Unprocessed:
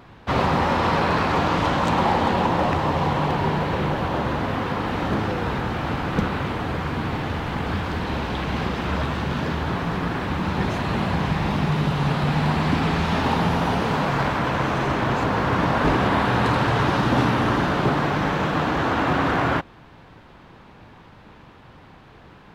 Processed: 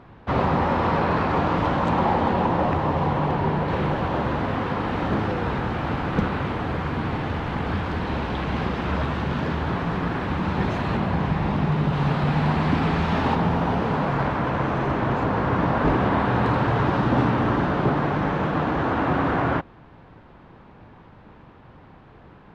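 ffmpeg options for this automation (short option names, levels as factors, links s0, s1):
-af "asetnsamples=n=441:p=0,asendcmd='3.68 lowpass f 2800;10.97 lowpass f 1600;11.93 lowpass f 2500;13.35 lowpass f 1400',lowpass=f=1500:p=1"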